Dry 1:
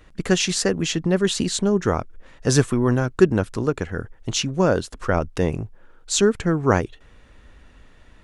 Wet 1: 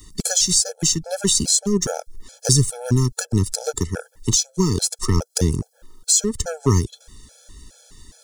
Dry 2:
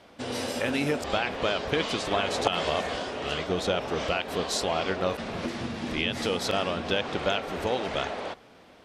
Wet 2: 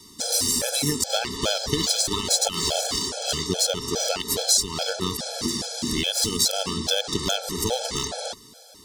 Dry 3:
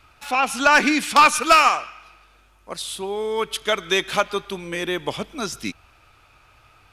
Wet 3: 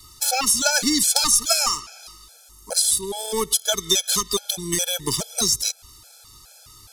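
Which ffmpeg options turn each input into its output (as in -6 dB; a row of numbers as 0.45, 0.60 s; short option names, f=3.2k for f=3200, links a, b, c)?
-filter_complex "[0:a]aexciter=amount=12.2:drive=6.2:freq=3.9k,asplit=2[a][b];[b]acrusher=bits=2:mix=0:aa=0.5,volume=-6dB[c];[a][c]amix=inputs=2:normalize=0,lowshelf=f=490:g=6.5,acrossover=split=120[d][e];[e]acompressor=threshold=-17dB:ratio=3[f];[d][f]amix=inputs=2:normalize=0,afftfilt=real='re*gt(sin(2*PI*2.4*pts/sr)*(1-2*mod(floor(b*sr/1024/440),2)),0)':imag='im*gt(sin(2*PI*2.4*pts/sr)*(1-2*mod(floor(b*sr/1024/440),2)),0)':win_size=1024:overlap=0.75"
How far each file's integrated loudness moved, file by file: +2.0, +5.0, 0.0 LU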